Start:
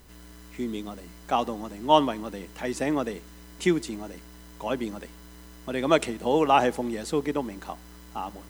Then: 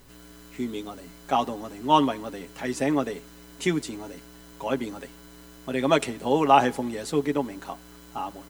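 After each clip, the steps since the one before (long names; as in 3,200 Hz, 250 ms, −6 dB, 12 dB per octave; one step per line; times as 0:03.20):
comb filter 7.3 ms, depth 56%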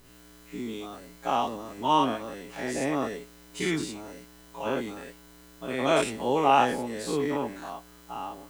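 every bin's largest magnitude spread in time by 120 ms
level −7.5 dB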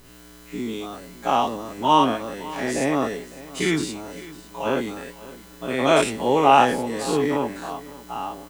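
single-tap delay 555 ms −18.5 dB
level +6 dB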